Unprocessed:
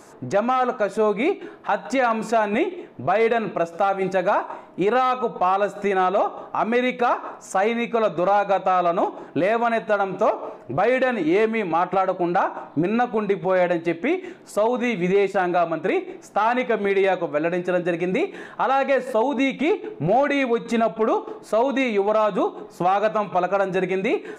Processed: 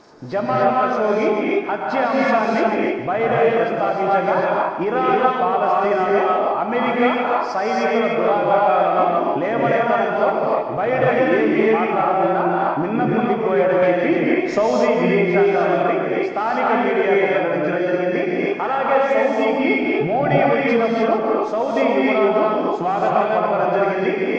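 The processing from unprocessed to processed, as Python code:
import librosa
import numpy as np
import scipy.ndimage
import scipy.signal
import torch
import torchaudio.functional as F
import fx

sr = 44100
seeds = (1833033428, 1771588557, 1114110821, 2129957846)

y = fx.freq_compress(x, sr, knee_hz=2500.0, ratio=1.5)
y = fx.echo_feedback(y, sr, ms=148, feedback_pct=45, wet_db=-10.0)
y = fx.rev_gated(y, sr, seeds[0], gate_ms=330, shape='rising', drr_db=-4.0)
y = fx.band_squash(y, sr, depth_pct=100, at=(13.82, 15.83))
y = y * librosa.db_to_amplitude(-2.0)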